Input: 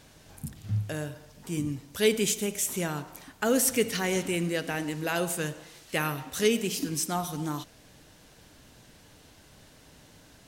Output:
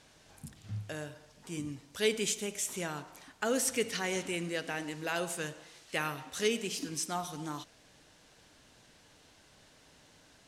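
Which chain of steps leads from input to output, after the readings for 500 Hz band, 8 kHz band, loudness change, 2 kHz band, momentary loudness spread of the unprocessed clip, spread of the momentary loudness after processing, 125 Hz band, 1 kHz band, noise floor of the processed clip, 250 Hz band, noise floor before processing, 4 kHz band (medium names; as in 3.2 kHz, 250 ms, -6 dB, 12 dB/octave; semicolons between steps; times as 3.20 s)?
-6.0 dB, -5.5 dB, -6.0 dB, -3.5 dB, 14 LU, 15 LU, -9.5 dB, -4.5 dB, -62 dBFS, -8.0 dB, -56 dBFS, -3.5 dB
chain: low-pass 9.1 kHz 12 dB/octave; bass shelf 320 Hz -7.5 dB; trim -3.5 dB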